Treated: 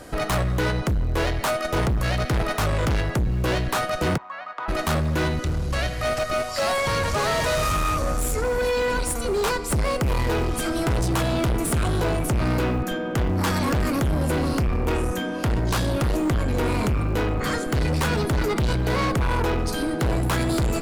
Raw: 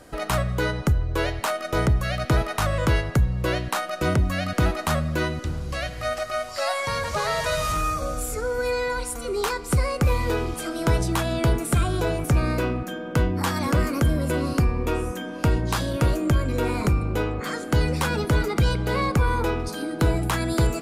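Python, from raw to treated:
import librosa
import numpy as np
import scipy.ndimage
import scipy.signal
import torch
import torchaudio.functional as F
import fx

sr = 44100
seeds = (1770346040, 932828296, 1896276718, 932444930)

p1 = fx.schmitt(x, sr, flips_db=-23.5)
p2 = x + (p1 * 10.0 ** (-11.0 / 20.0))
p3 = fx.ladder_bandpass(p2, sr, hz=1100.0, resonance_pct=60, at=(4.16, 4.68), fade=0.02)
p4 = 10.0 ** (-26.0 / 20.0) * np.tanh(p3 / 10.0 ** (-26.0 / 20.0))
y = p4 * 10.0 ** (6.5 / 20.0)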